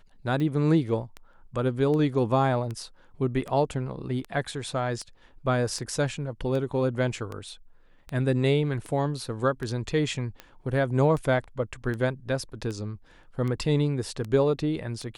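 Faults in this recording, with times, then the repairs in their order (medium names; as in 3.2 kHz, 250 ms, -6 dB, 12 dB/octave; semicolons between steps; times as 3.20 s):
tick 78 rpm -22 dBFS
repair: de-click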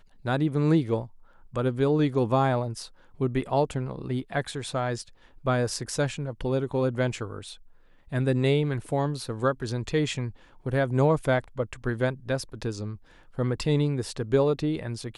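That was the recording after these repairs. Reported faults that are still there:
nothing left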